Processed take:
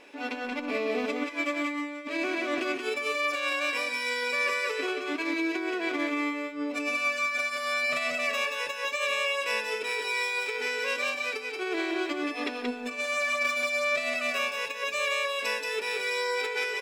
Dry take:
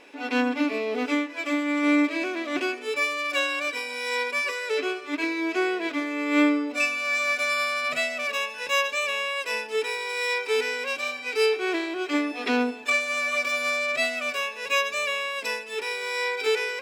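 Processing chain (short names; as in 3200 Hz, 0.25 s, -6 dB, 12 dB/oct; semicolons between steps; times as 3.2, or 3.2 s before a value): negative-ratio compressor -27 dBFS, ratio -0.5; resonator 580 Hz, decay 0.52 s, mix 60%; on a send: echo 0.179 s -3.5 dB; on the sum: gain +4 dB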